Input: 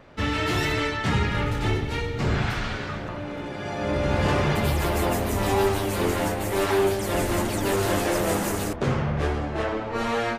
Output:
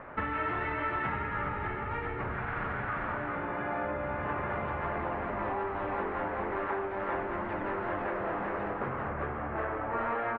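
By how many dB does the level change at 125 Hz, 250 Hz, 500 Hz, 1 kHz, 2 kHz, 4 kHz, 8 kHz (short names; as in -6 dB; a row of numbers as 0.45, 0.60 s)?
-14.5 dB, -11.5 dB, -9.5 dB, -3.5 dB, -6.0 dB, -23.0 dB, under -40 dB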